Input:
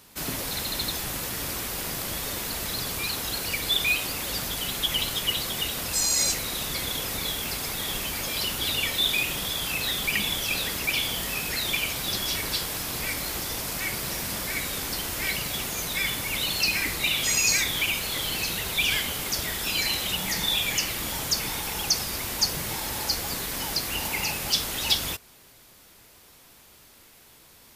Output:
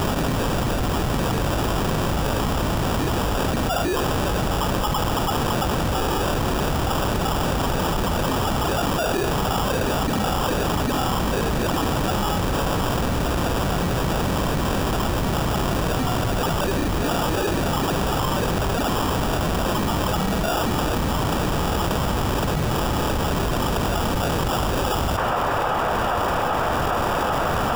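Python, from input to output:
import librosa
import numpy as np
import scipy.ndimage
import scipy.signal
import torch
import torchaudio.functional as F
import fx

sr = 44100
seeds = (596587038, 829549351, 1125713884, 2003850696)

p1 = fx.bass_treble(x, sr, bass_db=6, treble_db=-6)
p2 = fx.sample_hold(p1, sr, seeds[0], rate_hz=2100.0, jitter_pct=0)
p3 = 10.0 ** (-22.5 / 20.0) * np.tanh(p2 / 10.0 ** (-22.5 / 20.0))
p4 = p3 + fx.echo_wet_bandpass(p3, sr, ms=792, feedback_pct=80, hz=1100.0, wet_db=-16, dry=0)
p5 = fx.env_flatten(p4, sr, amount_pct=100)
y = F.gain(torch.from_numpy(p5), 3.5).numpy()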